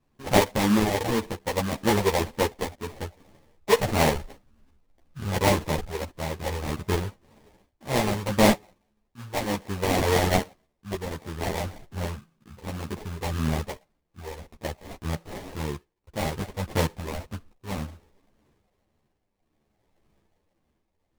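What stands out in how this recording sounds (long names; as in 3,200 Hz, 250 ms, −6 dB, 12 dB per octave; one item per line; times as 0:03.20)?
tremolo triangle 0.61 Hz, depth 65%
phaser sweep stages 12, 1.8 Hz, lowest notch 220–2,200 Hz
aliases and images of a low sample rate 1,400 Hz, jitter 20%
a shimmering, thickened sound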